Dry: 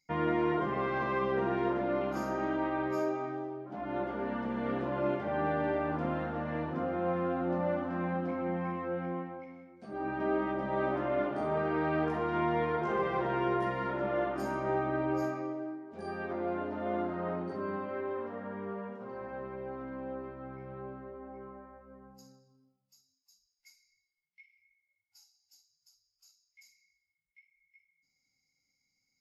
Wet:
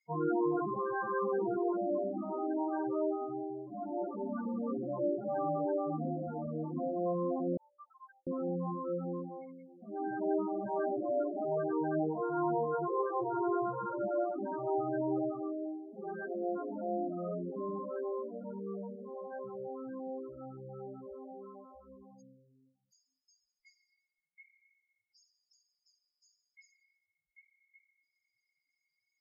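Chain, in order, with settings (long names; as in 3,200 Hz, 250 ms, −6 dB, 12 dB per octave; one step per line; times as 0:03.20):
spectral peaks only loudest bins 8
0:07.57–0:08.27: Chebyshev band-pass filter 1,100–3,500 Hz, order 4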